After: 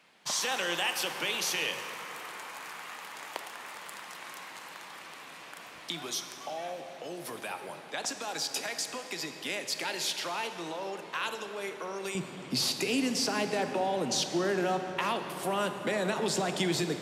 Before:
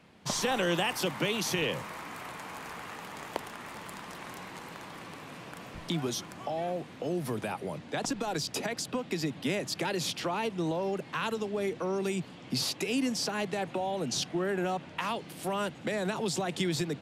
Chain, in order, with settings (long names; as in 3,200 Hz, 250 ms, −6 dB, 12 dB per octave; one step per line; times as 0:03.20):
high-pass filter 1,300 Hz 6 dB per octave, from 0:12.15 210 Hz
dense smooth reverb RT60 3.7 s, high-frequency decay 0.55×, DRR 6.5 dB
level +2 dB